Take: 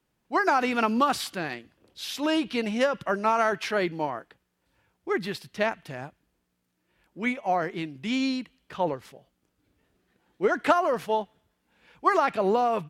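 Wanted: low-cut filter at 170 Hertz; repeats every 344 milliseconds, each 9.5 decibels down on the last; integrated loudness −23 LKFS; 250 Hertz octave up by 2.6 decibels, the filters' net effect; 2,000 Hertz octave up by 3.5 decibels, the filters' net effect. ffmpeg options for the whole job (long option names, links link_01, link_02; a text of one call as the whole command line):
ffmpeg -i in.wav -af "highpass=170,equalizer=frequency=250:width_type=o:gain=4,equalizer=frequency=2000:width_type=o:gain=4.5,aecho=1:1:344|688|1032|1376:0.335|0.111|0.0365|0.012,volume=2dB" out.wav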